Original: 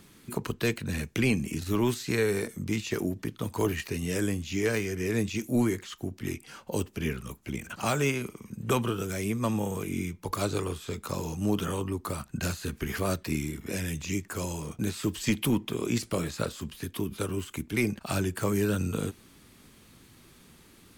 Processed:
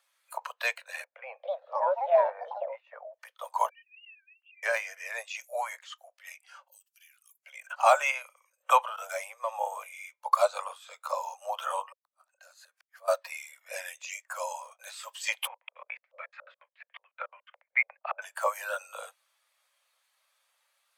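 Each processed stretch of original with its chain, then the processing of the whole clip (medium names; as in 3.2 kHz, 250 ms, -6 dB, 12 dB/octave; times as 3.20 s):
1.04–3.14 s: low-pass 1.1 kHz + ever faster or slower copies 315 ms, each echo +7 st, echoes 2, each echo -6 dB
3.69–4.63 s: formants replaced by sine waves + band-pass filter 2.7 kHz, Q 14
6.68–7.43 s: differentiator + compression 20:1, threshold -44 dBFS
8.84–9.54 s: level held to a coarse grid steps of 17 dB + waveshaping leveller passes 1
11.92–13.08 s: dynamic bell 2.7 kHz, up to -4 dB, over -51 dBFS, Q 1.8 + compression 5:1, threshold -42 dBFS + inverted gate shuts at -32 dBFS, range -39 dB
15.47–18.22 s: compression 2:1, threshold -32 dBFS + LFO low-pass square 7 Hz 210–2100 Hz
whole clip: steep high-pass 530 Hz 96 dB/octave; dynamic bell 890 Hz, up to +5 dB, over -50 dBFS, Q 1.6; spectral contrast expander 1.5:1; trim +6 dB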